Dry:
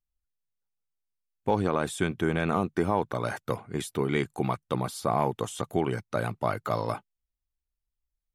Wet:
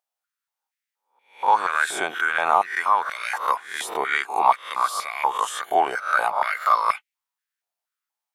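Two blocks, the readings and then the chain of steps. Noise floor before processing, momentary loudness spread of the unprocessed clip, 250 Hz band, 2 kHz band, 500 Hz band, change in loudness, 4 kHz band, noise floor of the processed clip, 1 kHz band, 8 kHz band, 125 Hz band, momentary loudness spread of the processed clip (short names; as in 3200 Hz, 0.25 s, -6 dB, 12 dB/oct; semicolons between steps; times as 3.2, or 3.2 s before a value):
under -85 dBFS, 6 LU, -13.5 dB, +13.0 dB, -1.5 dB, +7.0 dB, +8.0 dB, under -85 dBFS, +12.0 dB, +6.5 dB, under -25 dB, 7 LU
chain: spectral swells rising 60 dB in 0.45 s; stepped high-pass 4.2 Hz 720–2200 Hz; gain +4 dB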